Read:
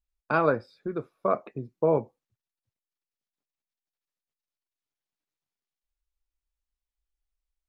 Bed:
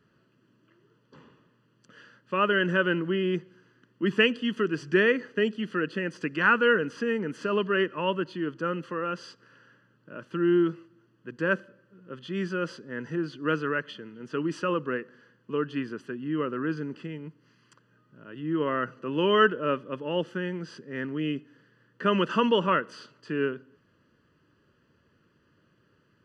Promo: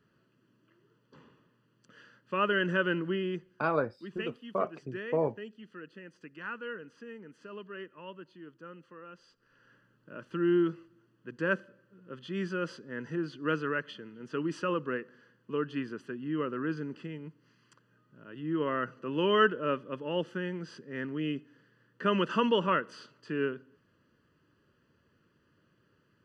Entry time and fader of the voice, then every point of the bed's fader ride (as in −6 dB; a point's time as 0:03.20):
3.30 s, −5.5 dB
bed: 0:03.11 −4 dB
0:04.03 −18 dB
0:09.27 −18 dB
0:09.74 −3.5 dB